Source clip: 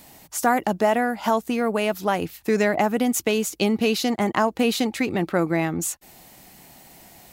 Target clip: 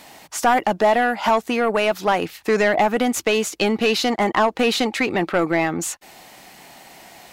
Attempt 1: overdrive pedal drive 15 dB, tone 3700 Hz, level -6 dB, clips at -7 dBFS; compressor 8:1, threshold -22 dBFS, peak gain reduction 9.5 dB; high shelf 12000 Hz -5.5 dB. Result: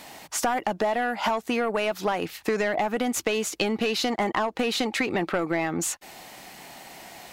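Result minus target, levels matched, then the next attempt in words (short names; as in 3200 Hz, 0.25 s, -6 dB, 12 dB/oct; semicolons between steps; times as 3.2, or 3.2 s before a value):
compressor: peak gain reduction +9.5 dB
overdrive pedal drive 15 dB, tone 3700 Hz, level -6 dB, clips at -7 dBFS; high shelf 12000 Hz -5.5 dB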